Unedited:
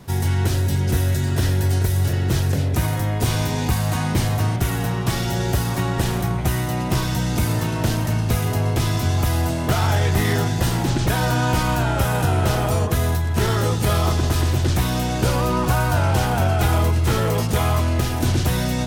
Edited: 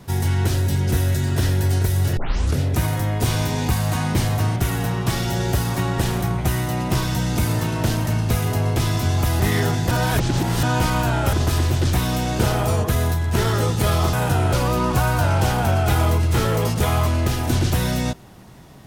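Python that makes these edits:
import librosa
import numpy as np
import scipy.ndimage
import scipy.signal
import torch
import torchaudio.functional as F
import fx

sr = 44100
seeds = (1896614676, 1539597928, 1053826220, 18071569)

y = fx.edit(x, sr, fx.tape_start(start_s=2.17, length_s=0.43),
    fx.cut(start_s=9.4, length_s=0.73),
    fx.reverse_span(start_s=10.64, length_s=0.72),
    fx.swap(start_s=12.06, length_s=0.4, other_s=14.16, other_length_s=1.1), tone=tone)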